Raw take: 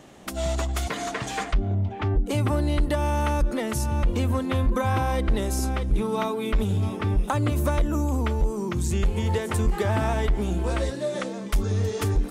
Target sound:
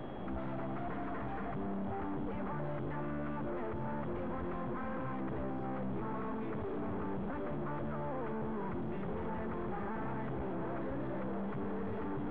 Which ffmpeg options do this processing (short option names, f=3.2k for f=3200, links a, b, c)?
-filter_complex "[0:a]afftfilt=real='re*lt(hypot(re,im),0.282)':imag='im*lt(hypot(re,im),0.282)':win_size=1024:overlap=0.75,acrossover=split=270|5400[a][b][c];[a]acompressor=threshold=-36dB:ratio=4[d];[b]acompressor=threshold=-36dB:ratio=4[e];[c]acompressor=threshold=-53dB:ratio=4[f];[d][e][f]amix=inputs=3:normalize=0,aeval=exprs='val(0)+0.00398*sin(2*PI*3300*n/s)':c=same,aeval=exprs='(tanh(316*val(0)+0.65)-tanh(0.65))/316':c=same,acrossover=split=140|1700[g][h][i];[i]acrusher=bits=4:dc=4:mix=0:aa=0.000001[j];[g][h][j]amix=inputs=3:normalize=0,volume=13dB"